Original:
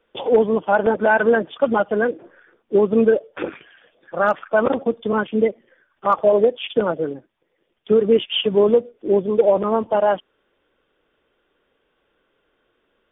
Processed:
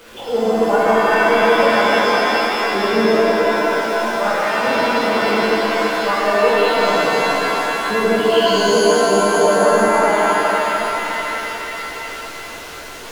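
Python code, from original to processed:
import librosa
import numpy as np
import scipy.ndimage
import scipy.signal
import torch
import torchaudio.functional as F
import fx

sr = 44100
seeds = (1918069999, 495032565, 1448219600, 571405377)

y = x + 0.5 * 10.0 ** (-31.5 / 20.0) * np.sign(x)
y = fx.rev_shimmer(y, sr, seeds[0], rt60_s=4.0, semitones=7, shimmer_db=-2, drr_db=-8.0)
y = y * librosa.db_to_amplitude(-8.0)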